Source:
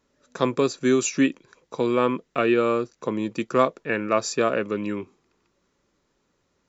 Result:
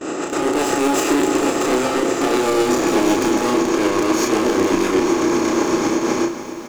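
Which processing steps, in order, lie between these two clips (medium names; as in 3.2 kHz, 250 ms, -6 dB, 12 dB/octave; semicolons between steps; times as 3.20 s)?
spectral levelling over time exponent 0.2; Doppler pass-by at 2.63 s, 24 m/s, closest 17 m; gate with hold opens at -25 dBFS; level rider gain up to 11 dB; saturation -25.5 dBFS, distortion -4 dB; tremolo saw up 8 Hz, depth 50%; doubling 32 ms -3.5 dB; small resonant body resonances 330/840 Hz, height 12 dB, ringing for 65 ms; bit-crushed delay 279 ms, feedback 80%, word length 8-bit, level -14 dB; trim +7.5 dB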